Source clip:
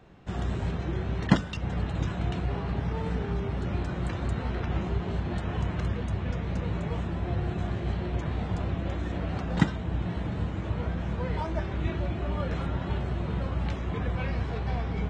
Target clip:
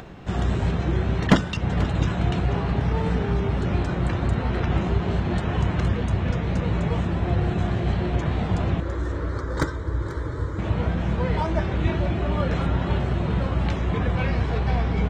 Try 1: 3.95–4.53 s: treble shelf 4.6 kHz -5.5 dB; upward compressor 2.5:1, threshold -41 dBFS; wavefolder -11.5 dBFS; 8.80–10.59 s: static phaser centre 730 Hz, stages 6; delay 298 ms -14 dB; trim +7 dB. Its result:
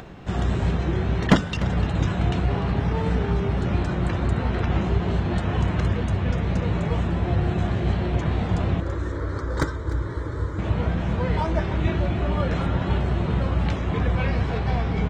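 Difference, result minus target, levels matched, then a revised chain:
echo 189 ms early
3.95–4.53 s: treble shelf 4.6 kHz -5.5 dB; upward compressor 2.5:1, threshold -41 dBFS; wavefolder -11.5 dBFS; 8.80–10.59 s: static phaser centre 730 Hz, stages 6; delay 487 ms -14 dB; trim +7 dB

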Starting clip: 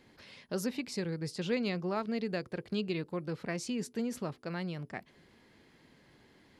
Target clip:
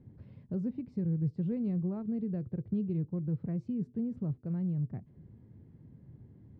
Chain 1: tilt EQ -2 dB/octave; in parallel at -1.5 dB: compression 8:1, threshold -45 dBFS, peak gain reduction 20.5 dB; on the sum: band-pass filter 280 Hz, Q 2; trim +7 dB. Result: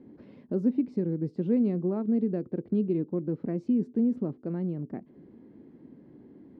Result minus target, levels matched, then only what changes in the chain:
125 Hz band -6.5 dB
change: band-pass filter 110 Hz, Q 2

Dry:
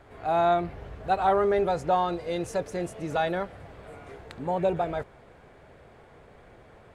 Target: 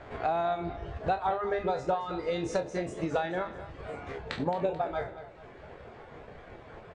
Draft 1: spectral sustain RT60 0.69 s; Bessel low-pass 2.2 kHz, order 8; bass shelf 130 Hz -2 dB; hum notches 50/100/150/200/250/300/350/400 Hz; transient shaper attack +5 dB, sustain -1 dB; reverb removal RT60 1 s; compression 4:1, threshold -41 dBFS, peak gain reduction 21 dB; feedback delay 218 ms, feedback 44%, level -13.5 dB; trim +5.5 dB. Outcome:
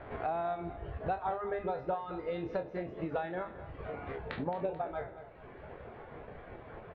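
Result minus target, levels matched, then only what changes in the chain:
4 kHz band -6.0 dB; compression: peak gain reduction +5 dB
change: Bessel low-pass 5 kHz, order 8; change: compression 4:1, threshold -34 dBFS, peak gain reduction 16 dB

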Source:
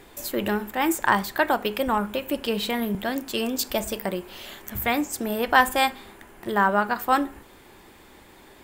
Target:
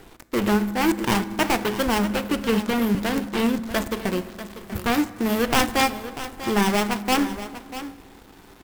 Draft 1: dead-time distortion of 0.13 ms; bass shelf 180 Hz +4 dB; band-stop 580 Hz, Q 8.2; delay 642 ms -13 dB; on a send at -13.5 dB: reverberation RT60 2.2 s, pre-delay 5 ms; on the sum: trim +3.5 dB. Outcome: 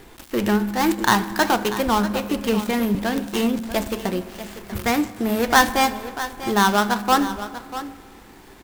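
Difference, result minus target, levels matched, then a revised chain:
dead-time distortion: distortion -7 dB
dead-time distortion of 0.35 ms; bass shelf 180 Hz +4 dB; band-stop 580 Hz, Q 8.2; delay 642 ms -13 dB; on a send at -13.5 dB: reverberation RT60 2.2 s, pre-delay 5 ms; on the sum: trim +3.5 dB

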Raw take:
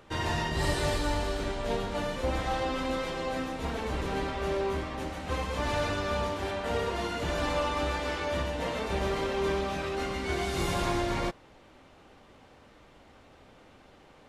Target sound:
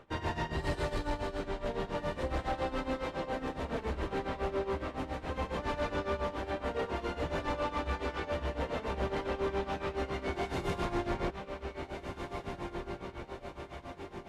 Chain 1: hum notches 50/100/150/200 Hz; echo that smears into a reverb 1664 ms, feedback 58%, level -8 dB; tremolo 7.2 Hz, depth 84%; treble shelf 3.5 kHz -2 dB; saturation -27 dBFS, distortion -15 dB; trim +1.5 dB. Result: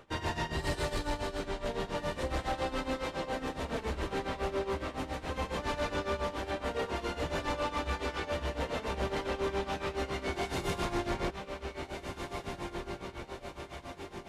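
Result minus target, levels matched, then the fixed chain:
8 kHz band +7.0 dB
hum notches 50/100/150/200 Hz; echo that smears into a reverb 1664 ms, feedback 58%, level -8 dB; tremolo 7.2 Hz, depth 84%; treble shelf 3.5 kHz -11.5 dB; saturation -27 dBFS, distortion -15 dB; trim +1.5 dB

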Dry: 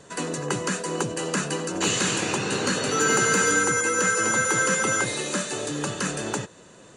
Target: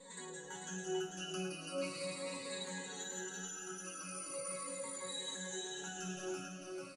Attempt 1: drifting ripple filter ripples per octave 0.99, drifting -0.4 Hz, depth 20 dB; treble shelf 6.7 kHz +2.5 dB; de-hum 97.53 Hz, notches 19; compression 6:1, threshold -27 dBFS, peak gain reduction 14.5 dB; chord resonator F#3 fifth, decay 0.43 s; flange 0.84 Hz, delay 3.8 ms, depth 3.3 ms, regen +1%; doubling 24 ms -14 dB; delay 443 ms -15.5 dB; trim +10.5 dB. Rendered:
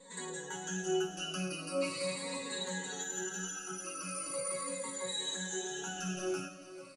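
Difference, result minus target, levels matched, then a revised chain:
echo-to-direct -10.5 dB; compression: peak gain reduction -6 dB
drifting ripple filter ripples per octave 0.99, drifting -0.4 Hz, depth 20 dB; treble shelf 6.7 kHz +2.5 dB; de-hum 97.53 Hz, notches 19; compression 6:1, threshold -34.5 dBFS, peak gain reduction 21 dB; chord resonator F#3 fifth, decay 0.43 s; flange 0.84 Hz, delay 3.8 ms, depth 3.3 ms, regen +1%; doubling 24 ms -14 dB; delay 443 ms -5 dB; trim +10.5 dB

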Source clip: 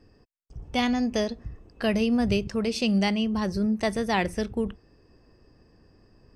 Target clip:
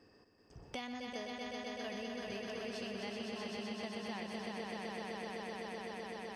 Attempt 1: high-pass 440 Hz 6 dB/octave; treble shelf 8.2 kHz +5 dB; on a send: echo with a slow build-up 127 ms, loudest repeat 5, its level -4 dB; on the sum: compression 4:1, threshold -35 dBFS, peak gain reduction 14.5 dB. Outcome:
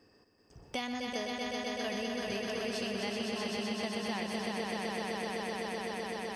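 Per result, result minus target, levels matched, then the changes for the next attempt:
compression: peak gain reduction -6.5 dB; 8 kHz band +3.0 dB
change: compression 4:1, threshold -44 dBFS, peak gain reduction 21.5 dB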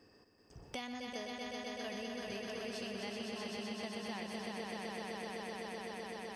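8 kHz band +3.0 dB
change: treble shelf 8.2 kHz -4.5 dB

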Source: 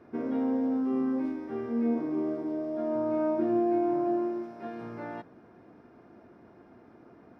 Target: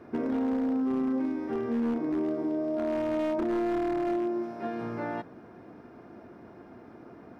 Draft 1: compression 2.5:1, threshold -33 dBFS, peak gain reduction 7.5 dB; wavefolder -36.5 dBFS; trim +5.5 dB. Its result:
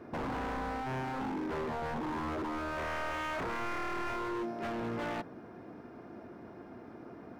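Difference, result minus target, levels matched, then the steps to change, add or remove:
wavefolder: distortion +25 dB
change: wavefolder -28.5 dBFS

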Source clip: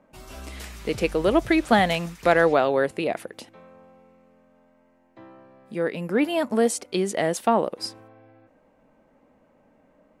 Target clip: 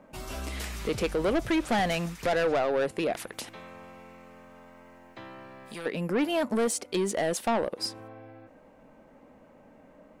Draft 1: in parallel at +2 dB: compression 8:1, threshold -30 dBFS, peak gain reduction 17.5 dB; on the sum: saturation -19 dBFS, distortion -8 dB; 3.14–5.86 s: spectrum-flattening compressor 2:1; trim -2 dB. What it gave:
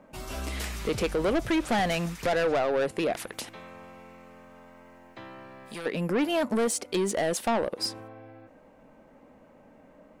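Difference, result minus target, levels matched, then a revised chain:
compression: peak gain reduction -7.5 dB
in parallel at +2 dB: compression 8:1, threshold -38.5 dBFS, peak gain reduction 25 dB; on the sum: saturation -19 dBFS, distortion -8 dB; 3.14–5.86 s: spectrum-flattening compressor 2:1; trim -2 dB

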